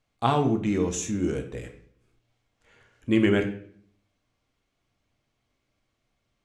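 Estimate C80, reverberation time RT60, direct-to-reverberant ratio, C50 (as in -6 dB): 13.5 dB, 0.60 s, 4.5 dB, 10.0 dB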